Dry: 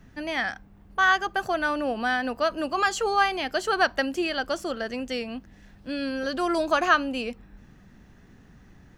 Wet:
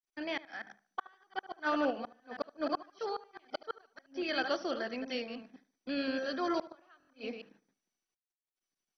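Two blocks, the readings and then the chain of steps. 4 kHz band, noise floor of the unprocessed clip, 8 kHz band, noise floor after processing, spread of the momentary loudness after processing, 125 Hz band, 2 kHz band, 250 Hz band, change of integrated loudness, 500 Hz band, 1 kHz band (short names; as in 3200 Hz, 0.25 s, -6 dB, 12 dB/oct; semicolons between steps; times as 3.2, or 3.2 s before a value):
-10.5 dB, -53 dBFS, -19.5 dB, under -85 dBFS, 13 LU, under -10 dB, -15.0 dB, -8.0 dB, -11.5 dB, -9.0 dB, -14.0 dB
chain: reverse delay 0.103 s, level -7 dB; gate -44 dBFS, range -40 dB; HPF 200 Hz 24 dB/oct; flipped gate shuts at -15 dBFS, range -37 dB; random-step tremolo 2.1 Hz; darkening echo 74 ms, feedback 31%, low-pass 3400 Hz, level -17 dB; wow and flutter 17 cents; stuck buffer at 6.98, samples 1024, times 4; gain -4.5 dB; MP2 32 kbps 24000 Hz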